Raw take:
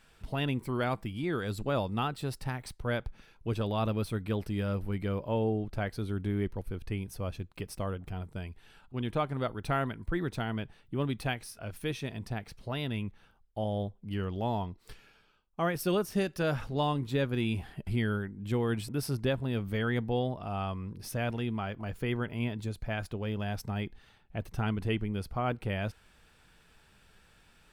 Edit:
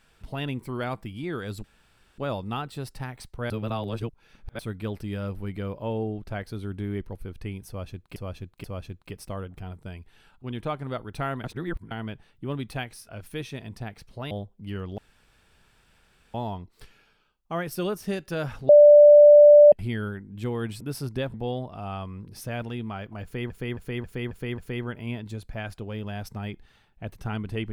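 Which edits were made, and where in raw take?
0:01.64: splice in room tone 0.54 s
0:02.96–0:04.05: reverse
0:07.14–0:07.62: repeat, 3 plays
0:09.94–0:10.41: reverse
0:12.81–0:13.75: remove
0:14.42: splice in room tone 1.36 s
0:16.77–0:17.80: beep over 589 Hz −8 dBFS
0:19.42–0:20.02: remove
0:21.91–0:22.18: repeat, 6 plays

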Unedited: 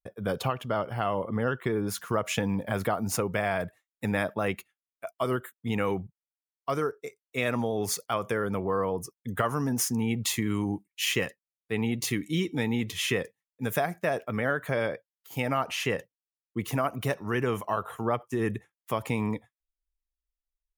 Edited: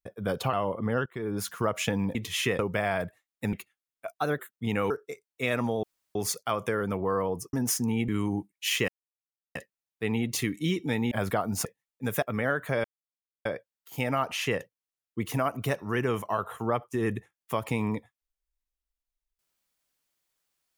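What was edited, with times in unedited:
0:00.53–0:01.03: remove
0:01.56–0:01.90: fade in, from −18.5 dB
0:02.65–0:03.19: swap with 0:12.80–0:13.24
0:04.13–0:04.52: remove
0:05.16–0:05.42: play speed 117%
0:05.93–0:06.85: remove
0:07.78: splice in room tone 0.32 s
0:09.16–0:09.64: remove
0:10.19–0:10.44: remove
0:11.24: splice in silence 0.67 s
0:13.81–0:14.22: remove
0:14.84: splice in silence 0.61 s

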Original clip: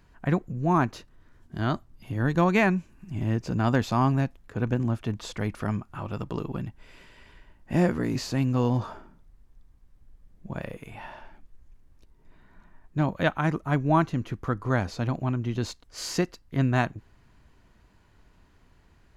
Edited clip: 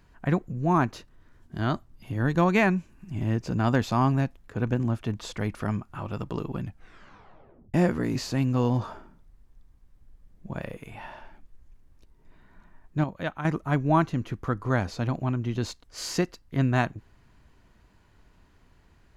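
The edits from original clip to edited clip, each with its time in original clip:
0:06.60: tape stop 1.14 s
0:13.04–0:13.45: clip gain −7 dB

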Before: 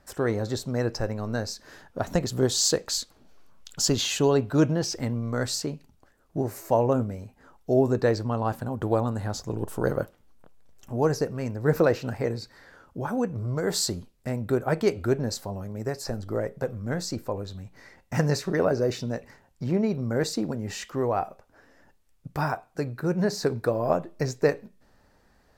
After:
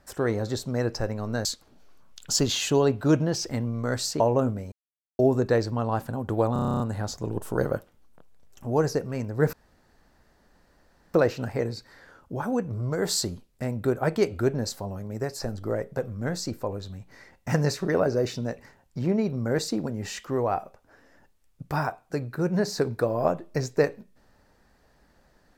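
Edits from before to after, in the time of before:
0:01.45–0:02.94: remove
0:05.69–0:06.73: remove
0:07.25–0:07.72: silence
0:09.06: stutter 0.03 s, 10 plays
0:11.79: splice in room tone 1.61 s

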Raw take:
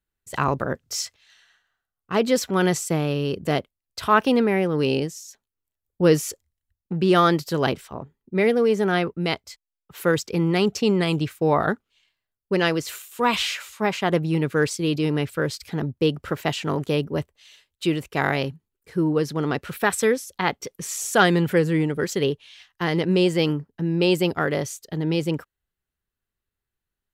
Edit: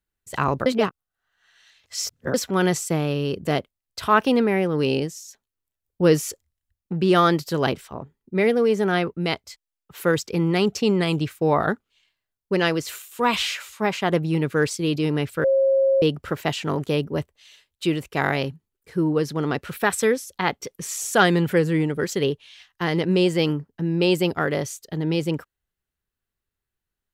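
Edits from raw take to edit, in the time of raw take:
0:00.66–0:02.34: reverse
0:15.44–0:16.02: beep over 540 Hz −15 dBFS

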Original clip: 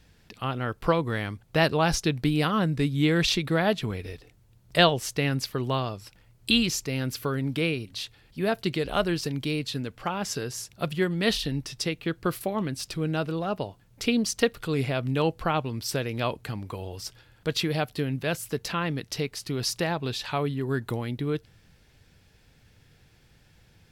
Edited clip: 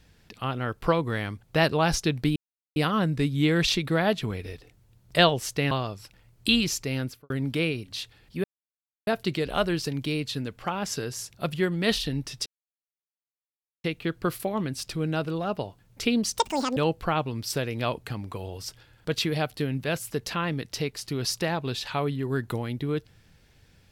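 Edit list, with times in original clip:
0:02.36: splice in silence 0.40 s
0:05.31–0:05.73: remove
0:06.99–0:07.32: fade out and dull
0:08.46: splice in silence 0.63 s
0:11.85: splice in silence 1.38 s
0:14.39–0:15.15: play speed 197%

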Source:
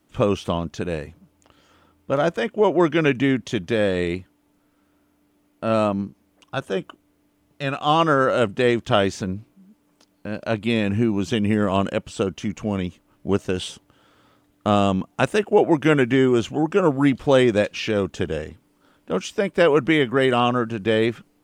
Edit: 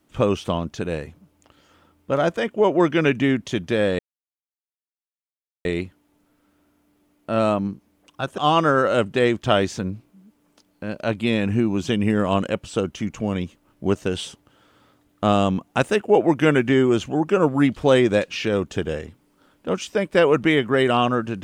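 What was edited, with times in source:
0:03.99: splice in silence 1.66 s
0:06.72–0:07.81: remove

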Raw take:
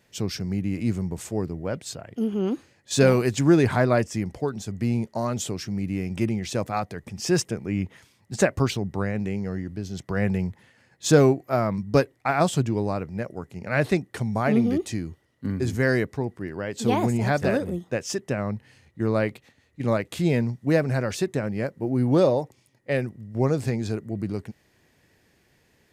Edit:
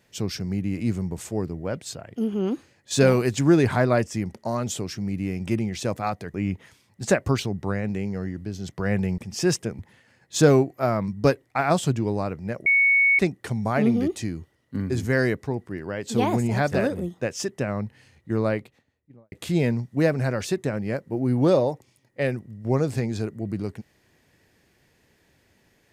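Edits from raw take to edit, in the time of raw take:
0:04.35–0:05.05: remove
0:07.04–0:07.65: move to 0:10.49
0:13.36–0:13.89: beep over 2,220 Hz −15 dBFS
0:19.02–0:20.02: fade out and dull

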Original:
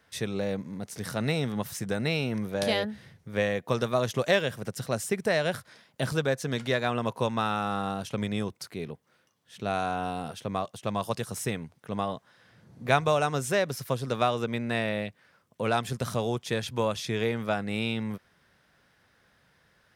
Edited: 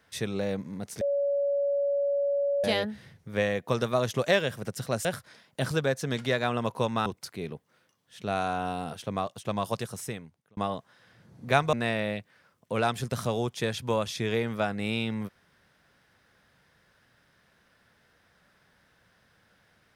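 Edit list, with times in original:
0:01.01–0:02.64: beep over 565 Hz −23.5 dBFS
0:05.05–0:05.46: remove
0:07.47–0:08.44: remove
0:11.10–0:11.95: fade out
0:13.11–0:14.62: remove

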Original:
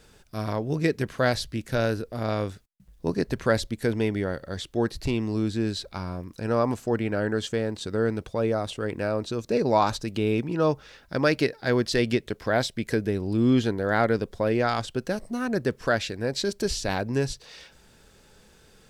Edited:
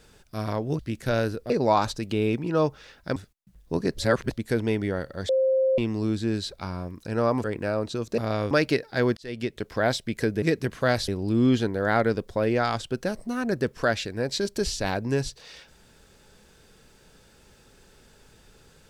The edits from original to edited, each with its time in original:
0:00.79–0:01.45: move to 0:13.12
0:02.16–0:02.49: swap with 0:09.55–0:11.21
0:03.30–0:03.65: reverse
0:04.62–0:05.11: beep over 527 Hz −18.5 dBFS
0:06.77–0:08.81: remove
0:11.87–0:12.38: fade in

